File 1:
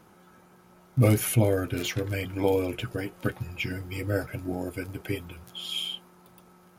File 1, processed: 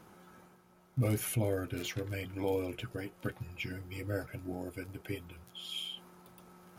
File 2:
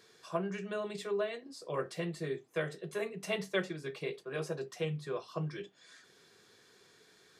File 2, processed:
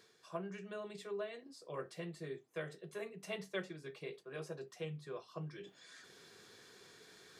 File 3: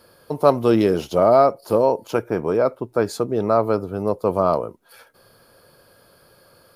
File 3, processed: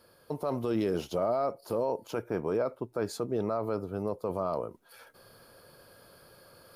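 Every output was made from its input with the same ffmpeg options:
-af "areverse,acompressor=mode=upward:threshold=-40dB:ratio=2.5,areverse,alimiter=limit=-13dB:level=0:latency=1:release=25,volume=-8dB"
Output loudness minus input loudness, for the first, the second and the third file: −9.0, −8.0, −13.0 LU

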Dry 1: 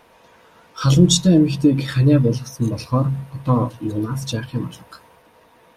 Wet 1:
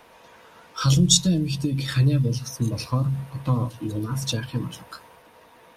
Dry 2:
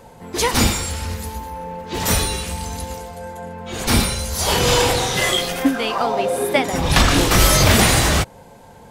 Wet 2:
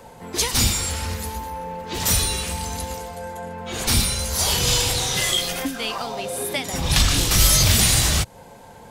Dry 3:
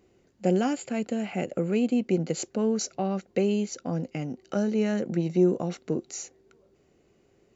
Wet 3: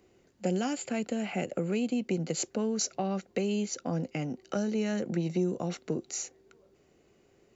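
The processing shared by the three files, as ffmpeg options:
-filter_complex "[0:a]acrossover=split=170|3000[link_01][link_02][link_03];[link_02]acompressor=threshold=-28dB:ratio=6[link_04];[link_01][link_04][link_03]amix=inputs=3:normalize=0,lowshelf=frequency=460:gain=-3.5,volume=1.5dB"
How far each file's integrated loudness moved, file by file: −4.5, −2.5, −4.5 LU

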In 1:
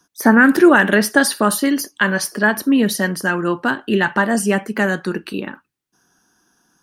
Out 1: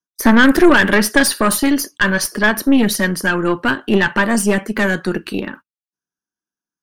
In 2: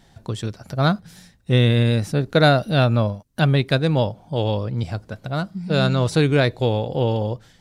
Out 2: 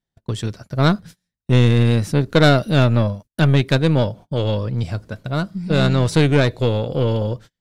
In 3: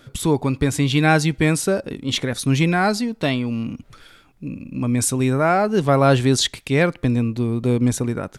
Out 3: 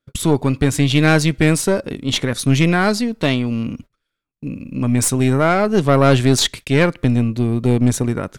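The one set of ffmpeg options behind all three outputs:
-af "agate=range=-34dB:threshold=-38dB:ratio=16:detection=peak,equalizer=frequency=790:width=4.8:gain=-6.5,aeval=exprs='(tanh(3.16*val(0)+0.55)-tanh(0.55))/3.16':channel_layout=same,volume=5.5dB"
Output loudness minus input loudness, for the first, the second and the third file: +1.5, +2.0, +3.0 LU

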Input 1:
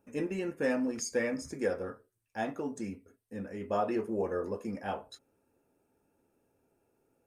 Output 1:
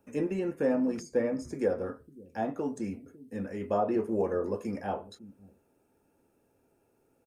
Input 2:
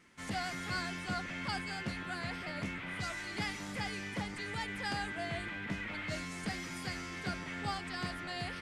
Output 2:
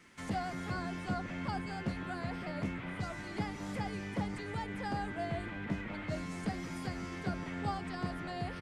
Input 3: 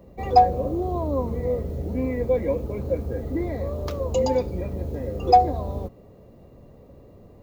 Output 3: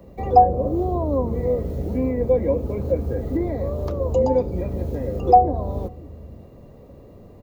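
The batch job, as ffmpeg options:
-filter_complex "[0:a]acrossover=split=340|1100[link_01][link_02][link_03];[link_01]aecho=1:1:552:0.211[link_04];[link_03]acompressor=threshold=-52dB:ratio=6[link_05];[link_04][link_02][link_05]amix=inputs=3:normalize=0,volume=3.5dB"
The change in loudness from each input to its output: +3.0, 0.0, +3.0 LU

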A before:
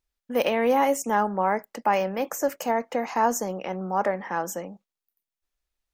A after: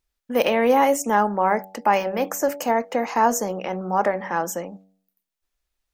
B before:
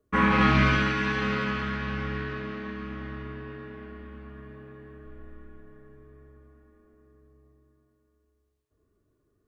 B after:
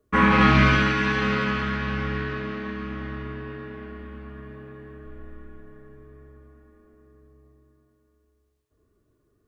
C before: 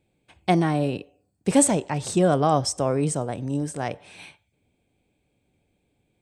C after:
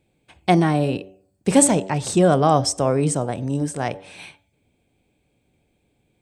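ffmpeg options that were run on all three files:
-af "bandreject=frequency=95.38:width_type=h:width=4,bandreject=frequency=190.76:width_type=h:width=4,bandreject=frequency=286.14:width_type=h:width=4,bandreject=frequency=381.52:width_type=h:width=4,bandreject=frequency=476.9:width_type=h:width=4,bandreject=frequency=572.28:width_type=h:width=4,bandreject=frequency=667.66:width_type=h:width=4,bandreject=frequency=763.04:width_type=h:width=4,bandreject=frequency=858.42:width_type=h:width=4,volume=4dB"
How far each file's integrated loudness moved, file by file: +3.5, +4.0, +3.5 LU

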